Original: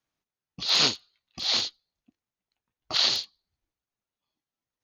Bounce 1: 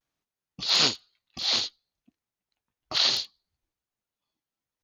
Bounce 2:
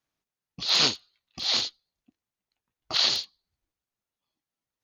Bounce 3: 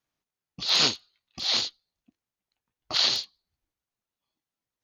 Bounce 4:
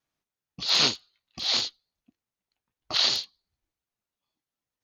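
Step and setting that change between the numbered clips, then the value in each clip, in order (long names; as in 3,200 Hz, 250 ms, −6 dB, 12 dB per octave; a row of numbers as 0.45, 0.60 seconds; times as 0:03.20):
pitch vibrato, speed: 0.32, 9.7, 5.1, 3.3 Hertz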